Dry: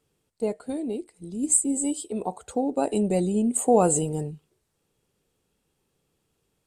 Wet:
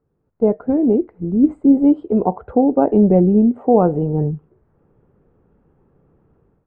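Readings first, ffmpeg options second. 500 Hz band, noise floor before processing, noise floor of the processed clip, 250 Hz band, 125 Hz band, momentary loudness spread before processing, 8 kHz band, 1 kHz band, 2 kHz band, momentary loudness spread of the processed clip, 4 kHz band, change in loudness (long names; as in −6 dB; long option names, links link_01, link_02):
+8.5 dB, −76 dBFS, −68 dBFS, +12.5 dB, +11.5 dB, 13 LU, below −40 dB, +6.5 dB, can't be measured, 7 LU, below −15 dB, +9.0 dB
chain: -af "lowpass=frequency=1500:width=0.5412,lowpass=frequency=1500:width=1.3066,lowshelf=frequency=490:gain=6.5,dynaudnorm=framelen=130:gausssize=5:maxgain=14dB,volume=-1dB"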